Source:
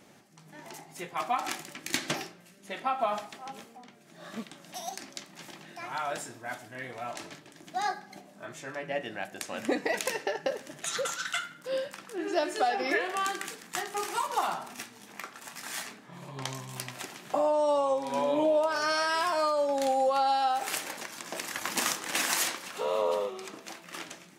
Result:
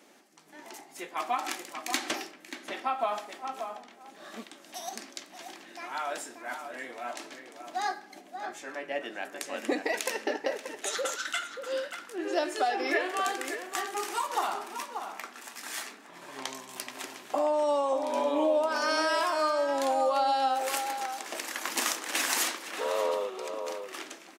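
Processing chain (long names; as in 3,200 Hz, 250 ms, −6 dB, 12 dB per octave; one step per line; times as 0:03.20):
Chebyshev high-pass filter 270 Hz, order 3
slap from a distant wall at 100 metres, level −7 dB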